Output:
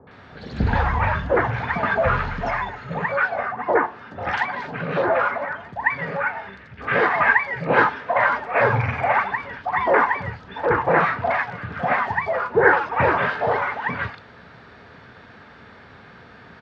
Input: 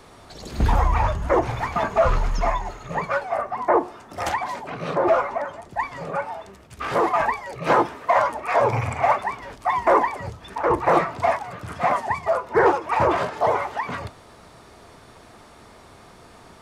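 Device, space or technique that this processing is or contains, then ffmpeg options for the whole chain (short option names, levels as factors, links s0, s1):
guitar cabinet: -filter_complex "[0:a]highpass=87,equalizer=f=340:t=q:w=4:g=-9,equalizer=f=650:t=q:w=4:g=-5,equalizer=f=1100:t=q:w=4:g=-4,equalizer=f=1600:t=q:w=4:g=8,lowpass=f=3900:w=0.5412,lowpass=f=3900:w=1.3066,asettb=1/sr,asplit=3[s0][s1][s2];[s0]atrim=end=5.794[s3];[s1]atrim=start=5.79:end=7.58,asetpts=PTS-STARTPTS,afade=t=in:d=0.004:c=qsin,afade=t=out:st=1.786:d=0.004:c=qsin,equalizer=f=2000:t=o:w=0.64:g=6[s4];[s2]atrim=start=7.576[s5];[s3][s4]acrossfade=d=0.004:c1=hsin:c2=qsin[s6];[s6][s5]acrossfade=d=0.004:c1=qsin:c2=hsin,acrossover=split=840|3400[s7][s8][s9];[s8]adelay=70[s10];[s9]adelay=110[s11];[s7][s10][s11]amix=inputs=3:normalize=0,volume=1.68"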